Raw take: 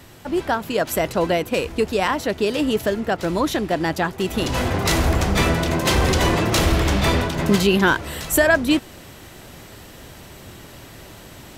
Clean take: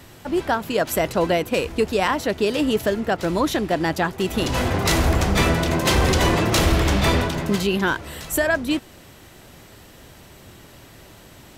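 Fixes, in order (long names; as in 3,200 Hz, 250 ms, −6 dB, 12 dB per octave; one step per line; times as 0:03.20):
level correction −4.5 dB, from 0:07.39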